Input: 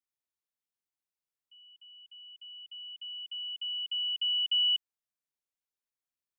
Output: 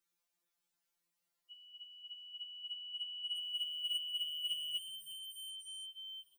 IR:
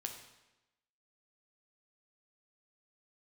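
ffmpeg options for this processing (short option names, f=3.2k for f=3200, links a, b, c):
-filter_complex "[0:a]asettb=1/sr,asplit=3[a][b][c];[a]atrim=end=3.374[d];[b]atrim=start=3.37:end=3.96,asetpts=PTS-STARTPTS,afade=t=in:d=0.004:c=qsin,afade=t=out:st=0.586:d=0.004:c=qsin,aemphasis=mode=production:type=75fm[e];[c]atrim=start=3.956[f];[d][e]acrossfade=d=0.004:c1=hsin:c2=qsin[g];[g][f]acrossfade=d=0.004:c1=qsin:c2=hsin,asoftclip=type=tanh:threshold=-39dB,asplit=8[h][i][j][k][l][m][n][o];[i]adelay=363,afreqshift=38,volume=-12dB[p];[j]adelay=726,afreqshift=76,volume=-16dB[q];[k]adelay=1089,afreqshift=114,volume=-20dB[r];[l]adelay=1452,afreqshift=152,volume=-24dB[s];[m]adelay=1815,afreqshift=190,volume=-28.1dB[t];[n]adelay=2178,afreqshift=228,volume=-32.1dB[u];[o]adelay=2541,afreqshift=266,volume=-36.1dB[v];[h][p][q][r][s][t][u][v]amix=inputs=8:normalize=0,afftfilt=real='re*2.83*eq(mod(b,8),0)':imag='im*2.83*eq(mod(b,8),0)':win_size=2048:overlap=0.75,volume=9.5dB"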